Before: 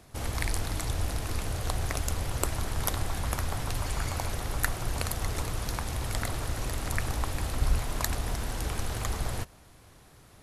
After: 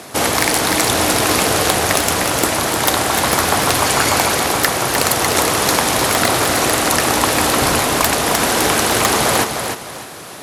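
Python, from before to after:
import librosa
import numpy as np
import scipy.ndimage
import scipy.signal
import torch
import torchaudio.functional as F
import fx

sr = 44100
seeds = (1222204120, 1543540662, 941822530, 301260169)

p1 = scipy.signal.sosfilt(scipy.signal.butter(2, 260.0, 'highpass', fs=sr, output='sos'), x)
p2 = fx.rider(p1, sr, range_db=10, speed_s=0.5)
p3 = fx.fold_sine(p2, sr, drive_db=16, ceiling_db=-5.5)
p4 = p3 + fx.echo_feedback(p3, sr, ms=304, feedback_pct=28, wet_db=-6.5, dry=0)
y = F.gain(torch.from_numpy(p4), 1.5).numpy()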